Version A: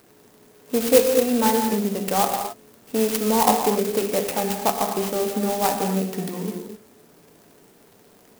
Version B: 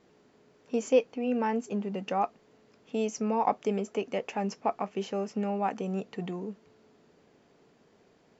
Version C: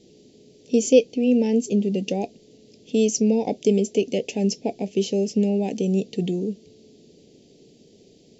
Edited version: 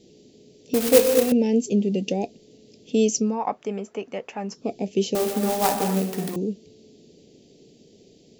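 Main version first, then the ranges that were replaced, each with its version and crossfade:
C
0.74–1.32 from A
3.27–4.6 from B, crossfade 0.24 s
5.15–6.36 from A

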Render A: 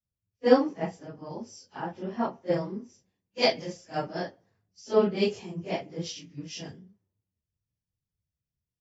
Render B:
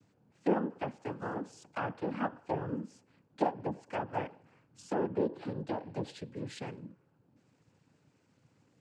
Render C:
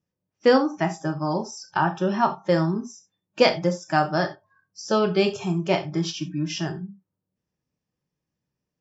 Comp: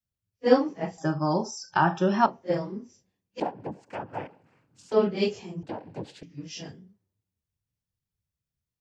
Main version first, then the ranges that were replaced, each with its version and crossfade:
A
0.98–2.26 from C
3.4–4.92 from B
5.63–6.23 from B

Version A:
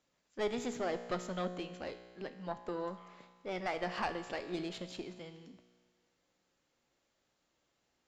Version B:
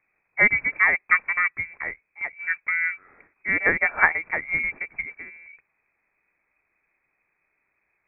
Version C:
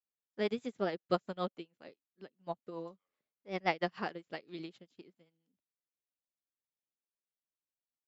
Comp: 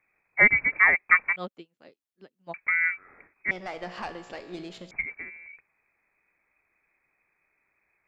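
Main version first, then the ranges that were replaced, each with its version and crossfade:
B
1.36–2.54 from C
3.51–4.91 from A

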